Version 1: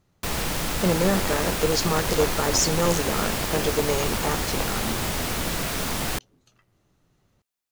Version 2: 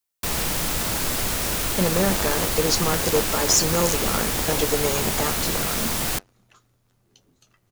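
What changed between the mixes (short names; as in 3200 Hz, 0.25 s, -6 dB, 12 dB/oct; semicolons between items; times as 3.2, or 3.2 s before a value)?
speech: entry +0.95 s; master: add high shelf 5600 Hz +7 dB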